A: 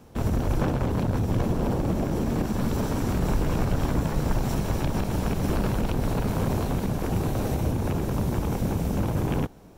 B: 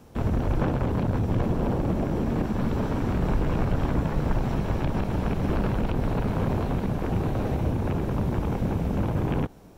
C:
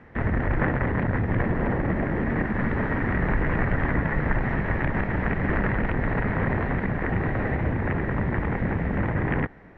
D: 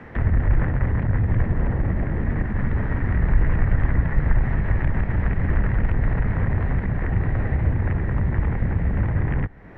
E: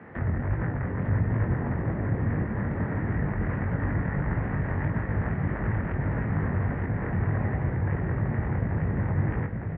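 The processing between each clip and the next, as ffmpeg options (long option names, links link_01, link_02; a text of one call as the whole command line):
ffmpeg -i in.wav -filter_complex "[0:a]acrossover=split=3600[link_01][link_02];[link_02]acompressor=threshold=-58dB:ratio=4:attack=1:release=60[link_03];[link_01][link_03]amix=inputs=2:normalize=0" out.wav
ffmpeg -i in.wav -af "lowpass=frequency=1900:width_type=q:width=10" out.wav
ffmpeg -i in.wav -filter_complex "[0:a]acrossover=split=120[link_01][link_02];[link_02]acompressor=threshold=-45dB:ratio=2.5[link_03];[link_01][link_03]amix=inputs=2:normalize=0,volume=8.5dB" out.wav
ffmpeg -i in.wav -af "flanger=delay=18:depth=4.5:speed=1.6,highpass=100,lowpass=2000,aecho=1:1:905:0.668" out.wav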